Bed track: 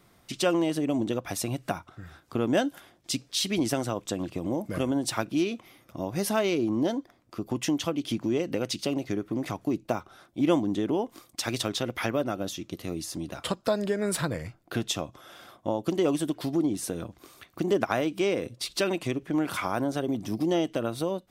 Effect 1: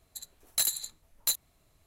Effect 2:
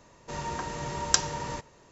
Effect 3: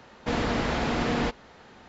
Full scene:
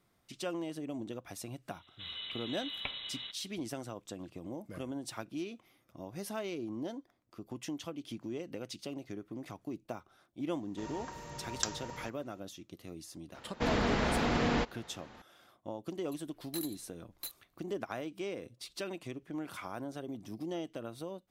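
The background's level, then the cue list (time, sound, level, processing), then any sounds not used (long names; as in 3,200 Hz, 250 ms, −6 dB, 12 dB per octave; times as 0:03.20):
bed track −13 dB
0:01.71: mix in 2 −9 dB + voice inversion scrambler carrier 3,900 Hz
0:10.49: mix in 2 −11 dB
0:13.34: mix in 3 −3.5 dB
0:15.96: mix in 1 −11.5 dB + parametric band 7,200 Hz −13 dB 0.64 octaves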